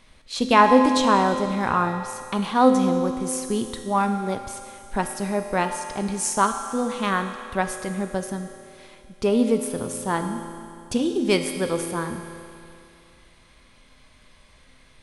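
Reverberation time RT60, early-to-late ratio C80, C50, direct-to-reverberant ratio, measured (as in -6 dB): 2.5 s, 7.5 dB, 6.5 dB, 5.0 dB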